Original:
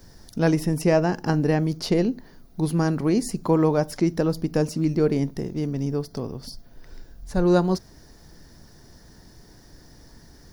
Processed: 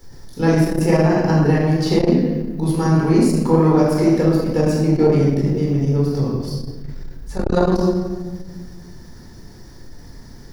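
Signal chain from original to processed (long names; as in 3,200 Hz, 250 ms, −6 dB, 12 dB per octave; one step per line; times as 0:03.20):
rectangular room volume 1,200 cubic metres, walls mixed, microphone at 4.2 metres
saturating transformer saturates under 240 Hz
level −1.5 dB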